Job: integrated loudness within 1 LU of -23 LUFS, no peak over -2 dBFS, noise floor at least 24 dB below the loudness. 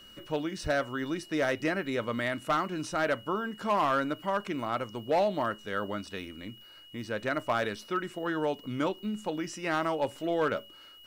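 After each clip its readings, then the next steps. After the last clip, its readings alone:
clipped samples 0.5%; clipping level -20.5 dBFS; steady tone 2.9 kHz; tone level -51 dBFS; loudness -31.5 LUFS; peak level -20.5 dBFS; loudness target -23.0 LUFS
-> clip repair -20.5 dBFS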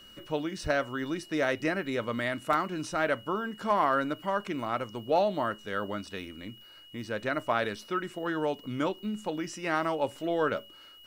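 clipped samples 0.0%; steady tone 2.9 kHz; tone level -51 dBFS
-> band-stop 2.9 kHz, Q 30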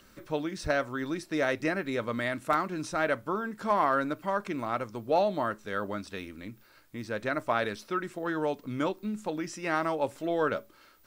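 steady tone not found; loudness -31.0 LUFS; peak level -12.5 dBFS; loudness target -23.0 LUFS
-> trim +8 dB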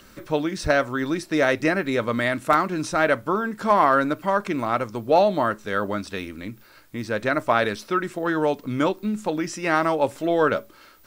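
loudness -23.0 LUFS; peak level -4.5 dBFS; noise floor -51 dBFS

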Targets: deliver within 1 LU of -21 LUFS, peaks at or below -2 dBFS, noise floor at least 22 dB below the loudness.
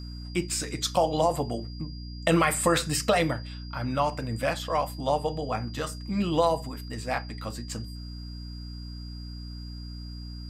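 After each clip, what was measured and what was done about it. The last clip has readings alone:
hum 60 Hz; highest harmonic 300 Hz; hum level -36 dBFS; steady tone 4.8 kHz; tone level -47 dBFS; loudness -28.0 LUFS; peak level -10.0 dBFS; loudness target -21.0 LUFS
-> hum notches 60/120/180/240/300 Hz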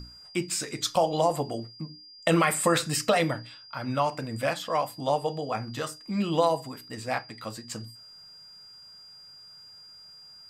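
hum not found; steady tone 4.8 kHz; tone level -47 dBFS
-> band-stop 4.8 kHz, Q 30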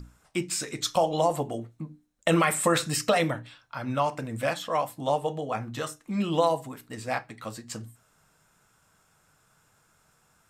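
steady tone not found; loudness -28.0 LUFS; peak level -9.5 dBFS; loudness target -21.0 LUFS
-> trim +7 dB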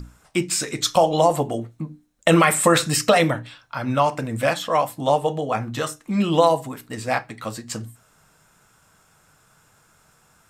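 loudness -21.0 LUFS; peak level -2.5 dBFS; noise floor -59 dBFS

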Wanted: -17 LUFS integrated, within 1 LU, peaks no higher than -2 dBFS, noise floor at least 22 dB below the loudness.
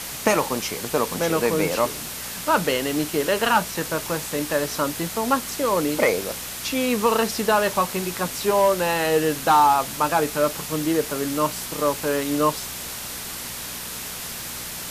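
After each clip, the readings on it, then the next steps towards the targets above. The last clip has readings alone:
hum 60 Hz; highest harmonic 240 Hz; hum level -45 dBFS; noise floor -33 dBFS; noise floor target -45 dBFS; loudness -23.0 LUFS; peak level -5.5 dBFS; loudness target -17.0 LUFS
-> de-hum 60 Hz, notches 4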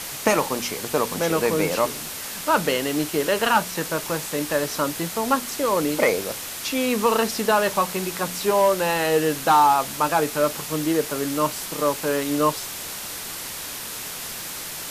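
hum not found; noise floor -33 dBFS; noise floor target -45 dBFS
-> noise reduction 12 dB, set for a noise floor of -33 dBFS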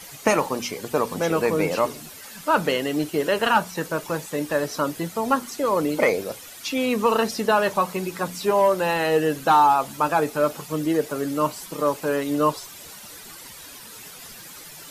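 noise floor -42 dBFS; noise floor target -45 dBFS
-> noise reduction 6 dB, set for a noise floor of -42 dBFS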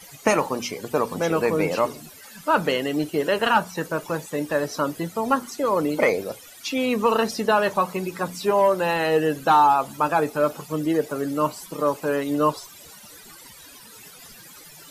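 noise floor -46 dBFS; loudness -23.0 LUFS; peak level -5.5 dBFS; loudness target -17.0 LUFS
-> trim +6 dB; peak limiter -2 dBFS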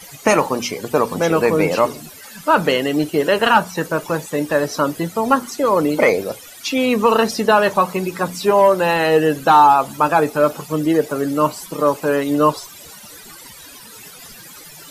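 loudness -17.0 LUFS; peak level -2.0 dBFS; noise floor -40 dBFS

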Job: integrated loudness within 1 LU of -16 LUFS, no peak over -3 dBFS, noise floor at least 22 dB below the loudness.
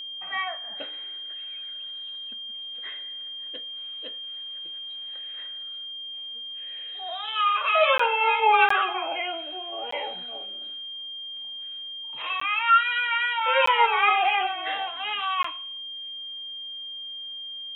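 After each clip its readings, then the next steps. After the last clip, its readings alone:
dropouts 6; longest dropout 14 ms; steady tone 3.2 kHz; tone level -34 dBFS; loudness -26.0 LUFS; peak level -7.0 dBFS; loudness target -16.0 LUFS
-> interpolate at 7.98/8.69/9.91/12.40/13.66/15.43 s, 14 ms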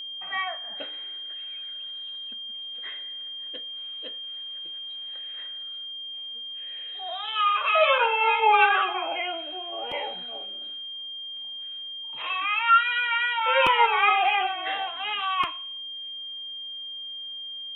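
dropouts 0; steady tone 3.2 kHz; tone level -34 dBFS
-> band-stop 3.2 kHz, Q 30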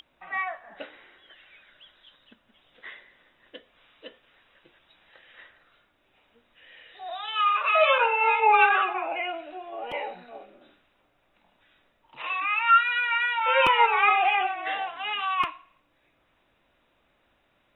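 steady tone not found; loudness -23.0 LUFS; peak level -7.5 dBFS; loudness target -16.0 LUFS
-> trim +7 dB; peak limiter -3 dBFS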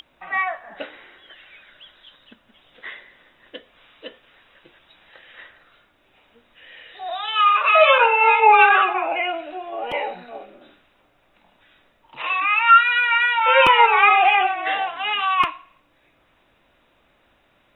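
loudness -16.0 LUFS; peak level -3.0 dBFS; noise floor -62 dBFS

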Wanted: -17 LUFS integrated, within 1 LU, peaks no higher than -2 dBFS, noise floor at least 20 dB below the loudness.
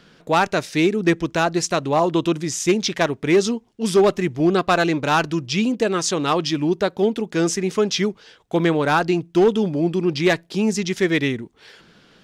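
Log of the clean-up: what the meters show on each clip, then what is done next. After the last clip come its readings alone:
loudness -20.0 LUFS; peak level -9.0 dBFS; loudness target -17.0 LUFS
-> trim +3 dB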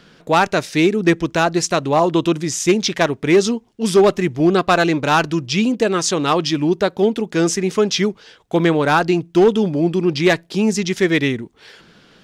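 loudness -17.0 LUFS; peak level -6.0 dBFS; noise floor -52 dBFS

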